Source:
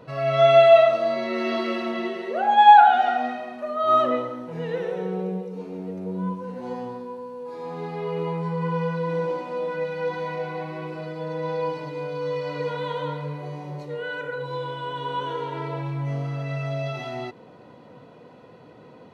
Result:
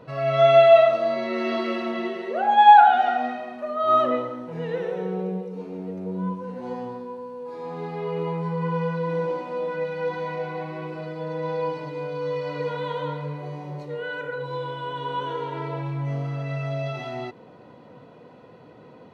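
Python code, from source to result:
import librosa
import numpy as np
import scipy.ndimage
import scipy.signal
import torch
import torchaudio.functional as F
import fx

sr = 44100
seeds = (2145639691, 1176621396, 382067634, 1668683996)

y = fx.high_shelf(x, sr, hz=5000.0, db=-5.0)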